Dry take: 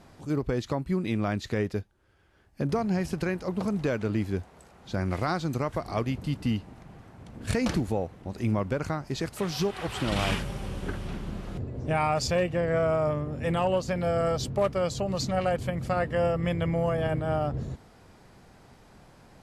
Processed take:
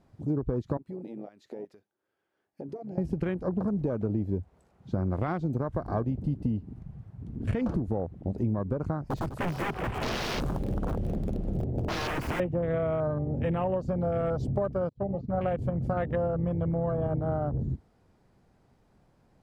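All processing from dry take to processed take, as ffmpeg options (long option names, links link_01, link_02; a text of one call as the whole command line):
ffmpeg -i in.wav -filter_complex "[0:a]asettb=1/sr,asplit=3[link_01][link_02][link_03];[link_01]atrim=end=0.774[link_04];[link_02]atrim=start=0.77:end=2.98,asetpts=PTS-STARTPTS,afade=type=in:duration=0.004:curve=qsin,afade=type=out:start_time=2.206:duration=0.004:curve=qsin,highpass=330,acompressor=threshold=-42dB:ratio=4:attack=3.2:release=140:knee=1:detection=peak[link_05];[link_03]atrim=start=2.976[link_06];[link_04][link_05]acrossfade=duration=0.004:curve1=hsin:curve2=qsin[link_07];[link_07][link_06]acrossfade=duration=0.004:curve1=qsin:curve2=hsin,asettb=1/sr,asplit=3[link_08][link_09][link_10];[link_08]atrim=end=9.024[link_11];[link_09]atrim=start=9.02:end=12.4,asetpts=PTS-STARTPTS,afade=type=in:duration=0.004:curve=qsin,afade=type=out:start_time=3.376:duration=0.004:curve=qsin,aeval=exprs='(mod(21.1*val(0)+1,2)-1)/21.1':channel_layout=same,aecho=1:1:203:0.266,atrim=end_sample=149058[link_12];[link_10]atrim=start=12.396[link_13];[link_11][link_12]acrossfade=duration=0.004:curve1=hsin:curve2=qsin[link_14];[link_14][link_13]acrossfade=duration=0.004:curve1=qsin:curve2=hsin,asettb=1/sr,asplit=3[link_15][link_16][link_17];[link_15]atrim=end=14.894[link_18];[link_16]atrim=start=14.89:end=15.41,asetpts=PTS-STARTPTS,afade=type=in:duration=0.004:curve=qsin,afade=type=out:start_time=0.516:duration=0.004:curve=qsin,lowpass=2100,agate=range=-33dB:threshold=-24dB:ratio=3:release=100:detection=peak,asplit=2[link_19][link_20];[link_20]adelay=35,volume=-13.5dB[link_21];[link_19][link_21]amix=inputs=2:normalize=0,atrim=end_sample=22932[link_22];[link_17]atrim=start=15.406[link_23];[link_18][link_22]acrossfade=duration=0.004:curve1=hsin:curve2=qsin[link_24];[link_24][link_23]acrossfade=duration=0.004:curve1=qsin:curve2=hsin,afwtdn=0.0178,tiltshelf=frequency=880:gain=4,acompressor=threshold=-29dB:ratio=6,volume=3.5dB" out.wav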